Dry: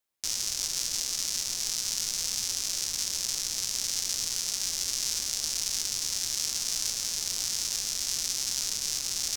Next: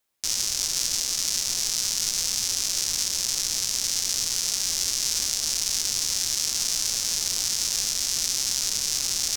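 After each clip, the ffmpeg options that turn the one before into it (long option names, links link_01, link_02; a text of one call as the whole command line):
ffmpeg -i in.wav -af "alimiter=limit=-15.5dB:level=0:latency=1,volume=7dB" out.wav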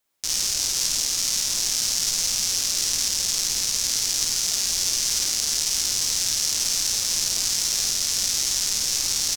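ffmpeg -i in.wav -af "aecho=1:1:52.48|102:0.794|0.316" out.wav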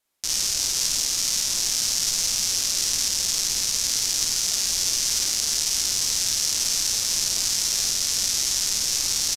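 ffmpeg -i in.wav -af "aresample=32000,aresample=44100" out.wav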